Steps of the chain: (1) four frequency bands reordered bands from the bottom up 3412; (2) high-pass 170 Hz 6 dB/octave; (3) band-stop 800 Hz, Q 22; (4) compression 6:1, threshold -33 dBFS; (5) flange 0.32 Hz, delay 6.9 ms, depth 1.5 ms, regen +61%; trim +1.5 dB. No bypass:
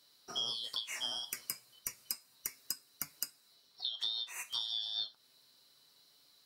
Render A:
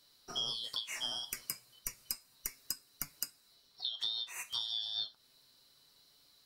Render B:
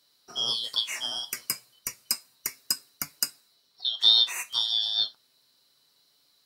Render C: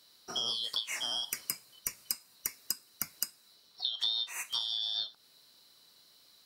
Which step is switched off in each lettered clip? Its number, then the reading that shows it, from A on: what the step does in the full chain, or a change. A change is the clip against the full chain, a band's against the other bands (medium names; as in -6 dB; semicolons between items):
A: 2, 125 Hz band +4.0 dB; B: 4, mean gain reduction 9.5 dB; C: 5, loudness change +4.0 LU